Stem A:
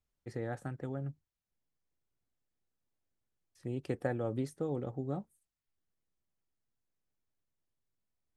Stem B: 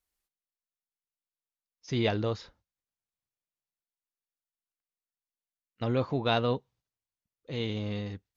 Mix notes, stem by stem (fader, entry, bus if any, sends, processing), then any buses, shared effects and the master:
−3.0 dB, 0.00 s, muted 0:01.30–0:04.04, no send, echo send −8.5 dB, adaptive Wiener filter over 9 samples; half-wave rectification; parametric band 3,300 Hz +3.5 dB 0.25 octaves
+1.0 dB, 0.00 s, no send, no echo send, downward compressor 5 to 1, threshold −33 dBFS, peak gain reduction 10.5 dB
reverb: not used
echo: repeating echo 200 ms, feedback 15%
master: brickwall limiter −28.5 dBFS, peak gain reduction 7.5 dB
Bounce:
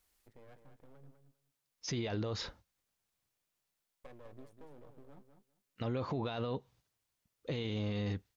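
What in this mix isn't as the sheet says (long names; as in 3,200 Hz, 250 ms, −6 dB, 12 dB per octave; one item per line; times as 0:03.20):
stem A −3.0 dB → −14.0 dB
stem B +1.0 dB → +9.5 dB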